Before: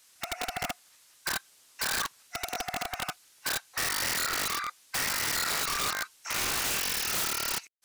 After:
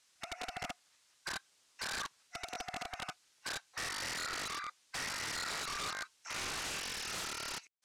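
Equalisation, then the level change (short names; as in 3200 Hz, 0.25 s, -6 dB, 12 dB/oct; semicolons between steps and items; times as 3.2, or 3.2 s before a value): LPF 7800 Hz 12 dB/oct; -8.0 dB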